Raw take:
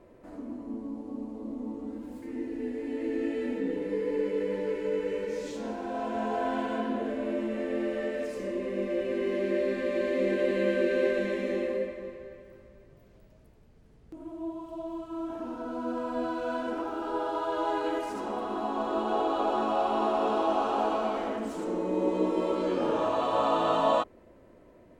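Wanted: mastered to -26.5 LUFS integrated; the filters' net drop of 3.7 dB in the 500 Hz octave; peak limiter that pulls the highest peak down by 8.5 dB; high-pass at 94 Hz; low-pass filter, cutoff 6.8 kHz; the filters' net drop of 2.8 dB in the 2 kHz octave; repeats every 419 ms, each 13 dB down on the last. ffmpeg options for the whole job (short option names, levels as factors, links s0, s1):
-af "highpass=94,lowpass=6800,equalizer=f=500:t=o:g=-4.5,equalizer=f=2000:t=o:g=-3.5,alimiter=level_in=1.06:limit=0.0631:level=0:latency=1,volume=0.944,aecho=1:1:419|838|1257:0.224|0.0493|0.0108,volume=2.51"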